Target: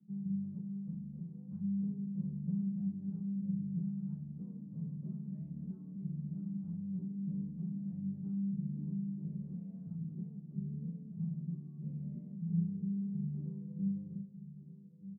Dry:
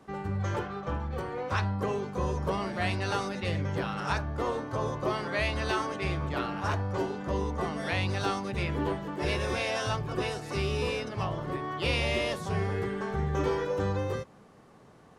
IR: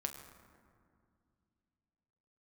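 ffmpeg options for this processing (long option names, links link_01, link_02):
-filter_complex "[0:a]asuperpass=centerf=180:order=4:qfactor=4.7,asplit=2[link_01][link_02];[link_02]adelay=1224,volume=-13dB,highshelf=frequency=4000:gain=-27.6[link_03];[link_01][link_03]amix=inputs=2:normalize=0,asplit=2[link_04][link_05];[1:a]atrim=start_sample=2205,adelay=95[link_06];[link_05][link_06]afir=irnorm=-1:irlink=0,volume=-13dB[link_07];[link_04][link_07]amix=inputs=2:normalize=0,volume=5dB"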